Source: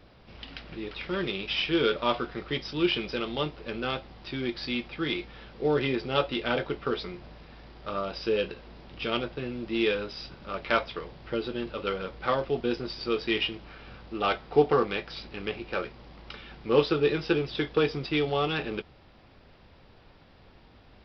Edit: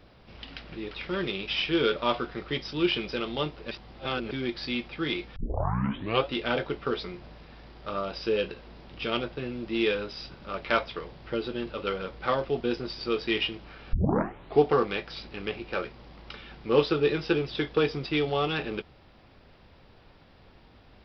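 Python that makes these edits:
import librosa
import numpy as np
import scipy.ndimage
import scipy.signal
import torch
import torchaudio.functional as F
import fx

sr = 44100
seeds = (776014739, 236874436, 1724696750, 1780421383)

y = fx.edit(x, sr, fx.reverse_span(start_s=3.71, length_s=0.6),
    fx.tape_start(start_s=5.36, length_s=0.9),
    fx.tape_start(start_s=13.93, length_s=0.66), tone=tone)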